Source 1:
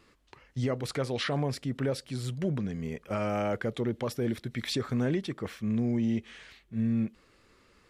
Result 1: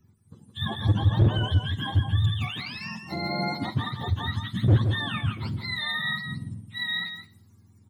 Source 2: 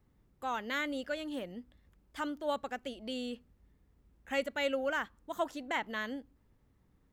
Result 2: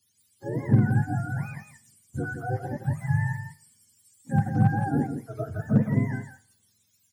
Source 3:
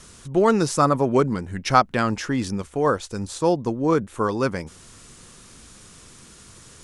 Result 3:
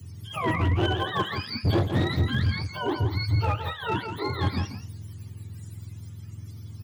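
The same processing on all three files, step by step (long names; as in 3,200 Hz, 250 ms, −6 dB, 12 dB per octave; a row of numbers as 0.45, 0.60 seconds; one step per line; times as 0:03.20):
frequency axis turned over on the octave scale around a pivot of 660 Hz
dynamic equaliser 110 Hz, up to +5 dB, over −44 dBFS, Q 2
in parallel at +1 dB: downward compressor 6 to 1, threshold −34 dBFS
on the sum: bass and treble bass +13 dB, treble +11 dB
hard clipping −11 dBFS
on a send: single-tap delay 168 ms −6.5 dB
on the sum: four-comb reverb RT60 0.57 s, combs from 33 ms, DRR 16 dB
multiband upward and downward expander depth 40%
loudness normalisation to −27 LKFS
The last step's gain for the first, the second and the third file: −6.0, −3.0, −9.0 decibels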